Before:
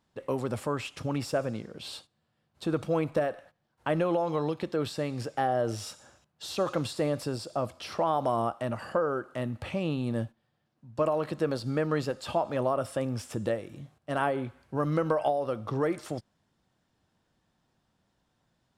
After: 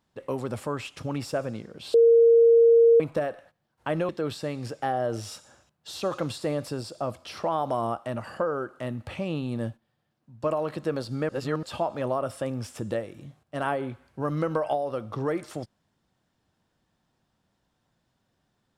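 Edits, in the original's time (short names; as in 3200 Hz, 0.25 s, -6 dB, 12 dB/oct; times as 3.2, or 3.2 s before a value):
1.94–3 bleep 463 Hz -13 dBFS
4.09–4.64 cut
11.84–12.18 reverse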